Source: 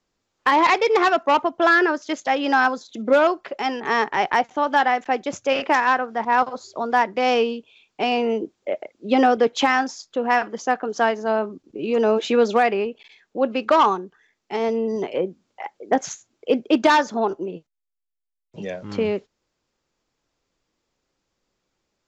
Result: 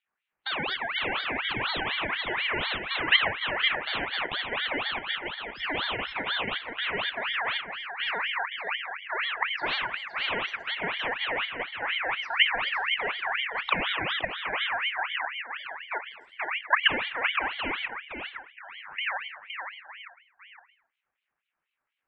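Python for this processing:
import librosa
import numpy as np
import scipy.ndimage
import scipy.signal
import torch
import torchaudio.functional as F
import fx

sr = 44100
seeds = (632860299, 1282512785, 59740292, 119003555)

y = fx.reverse_delay(x, sr, ms=558, wet_db=-9.0)
y = scipy.signal.sosfilt(scipy.signal.butter(2, 1400.0, 'lowpass', fs=sr, output='sos'), y)
y = fx.spec_gate(y, sr, threshold_db=-20, keep='strong')
y = fx.highpass(y, sr, hz=850.0, slope=24, at=(5.15, 5.62))
y = fx.level_steps(y, sr, step_db=14)
y = y + 10.0 ** (-6.5 / 20.0) * np.pad(y, (int(516 * sr / 1000.0), 0))[:len(y)]
y = fx.rev_gated(y, sr, seeds[0], gate_ms=320, shape='falling', drr_db=7.5)
y = fx.ring_lfo(y, sr, carrier_hz=1900.0, swing_pct=40, hz=4.1)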